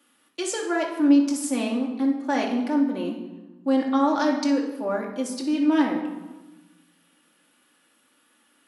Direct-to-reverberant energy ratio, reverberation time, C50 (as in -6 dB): -0.5 dB, 1.1 s, 5.0 dB